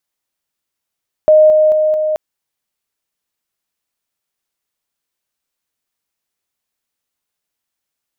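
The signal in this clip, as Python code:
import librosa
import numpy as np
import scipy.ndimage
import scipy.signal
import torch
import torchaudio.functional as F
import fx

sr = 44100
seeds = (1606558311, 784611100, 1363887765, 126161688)

y = fx.level_ladder(sr, hz=618.0, from_db=-4.0, step_db=-3.0, steps=4, dwell_s=0.22, gap_s=0.0)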